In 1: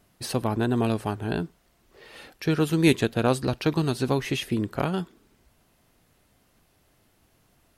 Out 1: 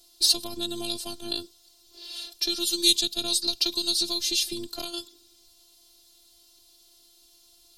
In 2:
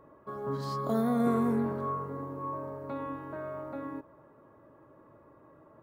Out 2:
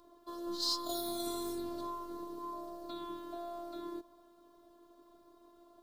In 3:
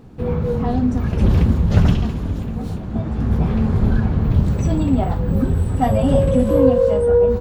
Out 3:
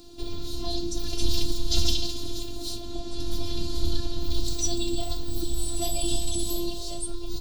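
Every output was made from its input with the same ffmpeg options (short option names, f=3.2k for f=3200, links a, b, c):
-filter_complex "[0:a]acrossover=split=160|3000[a][b][c];[b]acompressor=threshold=-33dB:ratio=3[d];[a][d][c]amix=inputs=3:normalize=0,afftfilt=real='hypot(re,im)*cos(PI*b)':imag='0':win_size=512:overlap=0.75,highshelf=f=2.8k:t=q:w=3:g=13.5"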